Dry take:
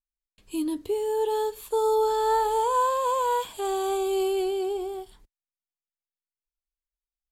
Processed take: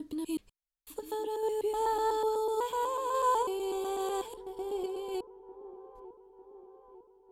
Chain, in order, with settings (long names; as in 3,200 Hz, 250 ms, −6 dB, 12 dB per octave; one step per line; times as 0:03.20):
slices reordered back to front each 124 ms, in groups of 7
sample-and-hold tremolo
delay with a low-pass on its return 900 ms, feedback 57%, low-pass 700 Hz, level −14 dB
level −4 dB